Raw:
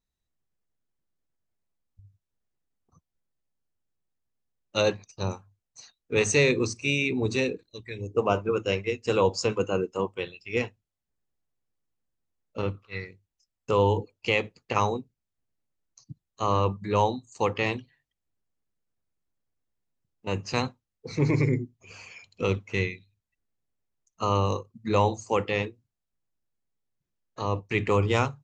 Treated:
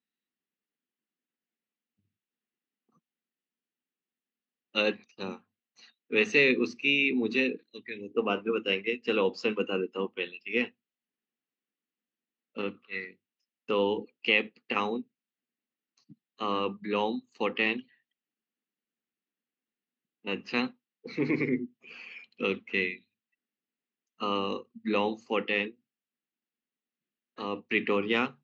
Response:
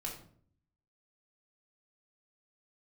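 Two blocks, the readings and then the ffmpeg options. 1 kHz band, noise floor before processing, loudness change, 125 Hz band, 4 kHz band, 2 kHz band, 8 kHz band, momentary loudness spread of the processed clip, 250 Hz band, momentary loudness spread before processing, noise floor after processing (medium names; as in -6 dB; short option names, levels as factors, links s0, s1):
-6.5 dB, -85 dBFS, -2.5 dB, -16.0 dB, +1.0 dB, +2.0 dB, under -15 dB, 15 LU, -1.0 dB, 14 LU, under -85 dBFS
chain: -af "highpass=f=210:w=0.5412,highpass=f=210:w=1.3066,equalizer=f=230:t=q:w=4:g=7,equalizer=f=620:t=q:w=4:g=-9,equalizer=f=950:t=q:w=4:g=-7,equalizer=f=1900:t=q:w=4:g=4,equalizer=f=2800:t=q:w=4:g=6,lowpass=f=4100:w=0.5412,lowpass=f=4100:w=1.3066,volume=0.794"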